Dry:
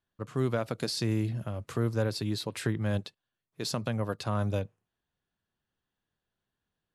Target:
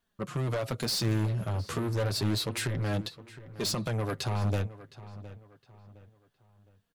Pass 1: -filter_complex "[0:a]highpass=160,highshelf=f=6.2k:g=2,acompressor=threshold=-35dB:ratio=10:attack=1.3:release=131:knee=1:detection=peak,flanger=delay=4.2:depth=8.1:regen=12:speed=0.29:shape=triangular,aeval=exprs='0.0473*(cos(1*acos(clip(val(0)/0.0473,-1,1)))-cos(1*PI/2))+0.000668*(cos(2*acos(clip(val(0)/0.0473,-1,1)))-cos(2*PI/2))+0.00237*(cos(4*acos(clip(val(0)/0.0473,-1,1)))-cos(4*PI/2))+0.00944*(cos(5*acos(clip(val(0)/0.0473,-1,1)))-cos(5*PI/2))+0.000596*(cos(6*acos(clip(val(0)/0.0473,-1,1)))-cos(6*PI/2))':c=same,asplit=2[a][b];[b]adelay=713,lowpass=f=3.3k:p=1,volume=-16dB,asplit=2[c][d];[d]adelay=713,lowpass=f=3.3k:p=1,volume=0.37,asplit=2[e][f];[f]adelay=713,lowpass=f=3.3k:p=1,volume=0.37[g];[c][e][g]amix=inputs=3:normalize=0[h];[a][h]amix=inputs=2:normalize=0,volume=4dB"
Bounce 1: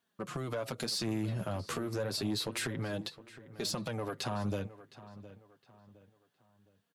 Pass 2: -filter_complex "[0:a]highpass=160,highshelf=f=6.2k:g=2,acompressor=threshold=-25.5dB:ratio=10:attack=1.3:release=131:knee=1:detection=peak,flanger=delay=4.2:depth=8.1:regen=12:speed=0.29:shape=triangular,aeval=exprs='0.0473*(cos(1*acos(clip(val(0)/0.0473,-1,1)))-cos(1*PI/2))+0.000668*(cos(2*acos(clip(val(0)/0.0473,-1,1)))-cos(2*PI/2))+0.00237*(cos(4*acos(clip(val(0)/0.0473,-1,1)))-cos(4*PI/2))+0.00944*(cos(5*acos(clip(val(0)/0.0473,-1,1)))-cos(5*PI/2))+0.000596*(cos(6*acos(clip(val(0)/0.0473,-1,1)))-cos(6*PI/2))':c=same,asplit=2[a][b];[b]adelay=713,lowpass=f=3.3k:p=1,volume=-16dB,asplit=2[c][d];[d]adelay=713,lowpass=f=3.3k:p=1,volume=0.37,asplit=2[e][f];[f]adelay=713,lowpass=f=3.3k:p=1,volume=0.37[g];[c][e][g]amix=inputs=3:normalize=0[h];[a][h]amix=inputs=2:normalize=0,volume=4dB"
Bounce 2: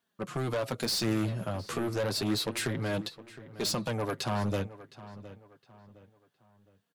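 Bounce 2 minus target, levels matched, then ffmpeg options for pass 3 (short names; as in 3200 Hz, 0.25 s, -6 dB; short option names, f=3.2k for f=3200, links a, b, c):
125 Hz band -4.5 dB
-filter_complex "[0:a]highshelf=f=6.2k:g=2,acompressor=threshold=-25.5dB:ratio=10:attack=1.3:release=131:knee=1:detection=peak,flanger=delay=4.2:depth=8.1:regen=12:speed=0.29:shape=triangular,aeval=exprs='0.0473*(cos(1*acos(clip(val(0)/0.0473,-1,1)))-cos(1*PI/2))+0.000668*(cos(2*acos(clip(val(0)/0.0473,-1,1)))-cos(2*PI/2))+0.00237*(cos(4*acos(clip(val(0)/0.0473,-1,1)))-cos(4*PI/2))+0.00944*(cos(5*acos(clip(val(0)/0.0473,-1,1)))-cos(5*PI/2))+0.000596*(cos(6*acos(clip(val(0)/0.0473,-1,1)))-cos(6*PI/2))':c=same,asplit=2[a][b];[b]adelay=713,lowpass=f=3.3k:p=1,volume=-16dB,asplit=2[c][d];[d]adelay=713,lowpass=f=3.3k:p=1,volume=0.37,asplit=2[e][f];[f]adelay=713,lowpass=f=3.3k:p=1,volume=0.37[g];[c][e][g]amix=inputs=3:normalize=0[h];[a][h]amix=inputs=2:normalize=0,volume=4dB"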